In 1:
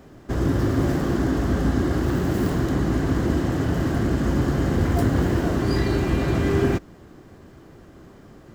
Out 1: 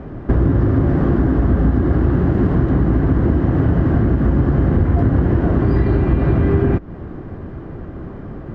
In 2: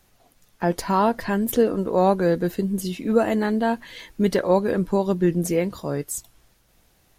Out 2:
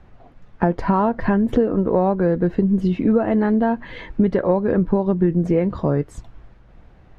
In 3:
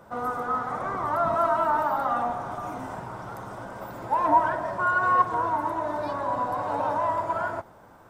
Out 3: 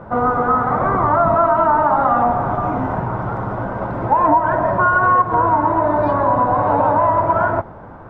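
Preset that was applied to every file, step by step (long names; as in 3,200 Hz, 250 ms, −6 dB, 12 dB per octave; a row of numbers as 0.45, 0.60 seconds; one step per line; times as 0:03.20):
low-pass filter 1,700 Hz 12 dB per octave
low-shelf EQ 180 Hz +7.5 dB
downward compressor 6 to 1, threshold −24 dBFS
normalise the peak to −3 dBFS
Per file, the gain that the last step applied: +12.0, +9.5, +13.5 decibels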